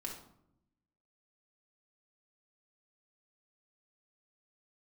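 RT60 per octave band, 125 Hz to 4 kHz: 1.2, 1.2, 0.85, 0.70, 0.50, 0.45 seconds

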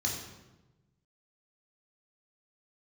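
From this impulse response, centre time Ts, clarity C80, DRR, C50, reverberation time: 46 ms, 6.0 dB, −2.0 dB, 3.5 dB, 1.1 s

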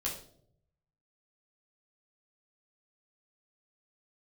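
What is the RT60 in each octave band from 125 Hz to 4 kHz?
1.2, 0.85, 0.80, 0.50, 0.40, 0.45 seconds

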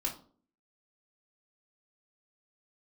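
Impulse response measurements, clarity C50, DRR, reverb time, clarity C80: 11.0 dB, −2.5 dB, 0.45 s, 16.5 dB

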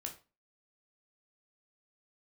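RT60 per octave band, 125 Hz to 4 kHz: 0.35, 0.35, 0.30, 0.30, 0.30, 0.25 seconds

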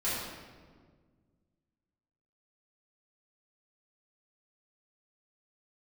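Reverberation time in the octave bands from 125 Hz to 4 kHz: 2.5, 2.3, 1.8, 1.5, 1.2, 1.0 seconds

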